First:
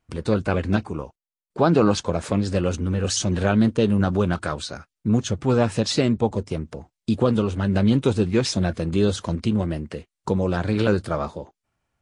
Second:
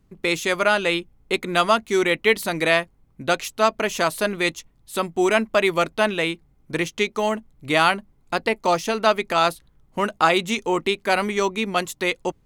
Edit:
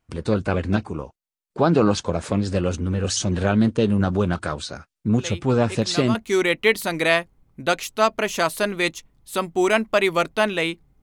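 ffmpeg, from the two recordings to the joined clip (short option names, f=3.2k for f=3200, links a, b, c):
-filter_complex "[1:a]asplit=2[a][b];[0:a]apad=whole_dur=11.02,atrim=end=11.02,atrim=end=6.152[c];[b]atrim=start=1.758:end=6.63[d];[a]atrim=start=0.79:end=1.76,asetpts=PTS-STARTPTS,volume=-12dB,afade=t=in:d=0.004:c=hsin,afade=t=out:st=0.966:d=0.004:c=hsin,adelay=5180[e];[c][d]acrossfade=d=0.004:c1=hsin:c2=hsin[f];[f][e]amix=inputs=2:normalize=0"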